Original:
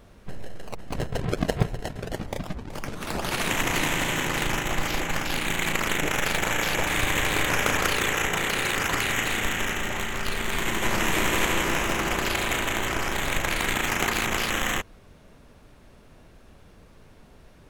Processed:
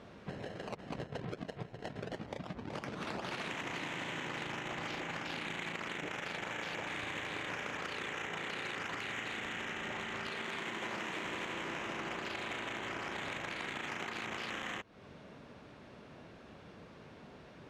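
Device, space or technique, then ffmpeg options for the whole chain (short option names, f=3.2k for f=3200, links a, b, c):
AM radio: -filter_complex "[0:a]asettb=1/sr,asplit=3[a][b][c];[a]atrim=end=10.264[d];[b]atrim=start=10.26:end=11.25,asetpts=PTS-STARTPTS,afade=t=in:d=0.004:c=qsin,afade=t=out:st=0.986:d=0.004:c=qsin,highpass=f=160:p=1[e];[c]atrim=start=11.246[f];[d][e]acrossfade=d=0.004:c1=hsin:c2=qsin[g];[g][f]acrossfade=d=0.004:c1=qsin:c2=hsin,highpass=130,lowpass=4.4k,acompressor=threshold=-38dB:ratio=10,asoftclip=type=tanh:threshold=-29.5dB,volume=1.5dB"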